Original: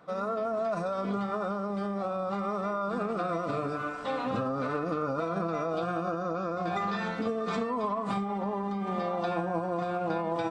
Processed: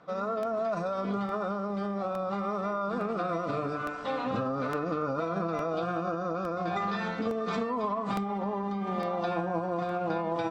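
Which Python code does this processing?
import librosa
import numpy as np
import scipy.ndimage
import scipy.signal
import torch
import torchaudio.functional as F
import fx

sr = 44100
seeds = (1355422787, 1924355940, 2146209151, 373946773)

y = scipy.signal.sosfilt(scipy.signal.butter(4, 7100.0, 'lowpass', fs=sr, output='sos'), x)
y = fx.buffer_crackle(y, sr, first_s=0.43, period_s=0.86, block=64, kind='repeat')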